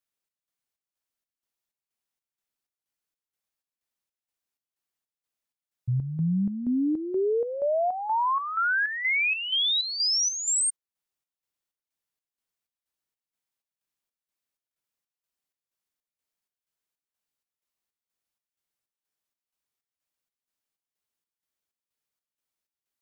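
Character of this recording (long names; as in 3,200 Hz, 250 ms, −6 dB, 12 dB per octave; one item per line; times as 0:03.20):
chopped level 2.1 Hz, depth 60%, duty 60%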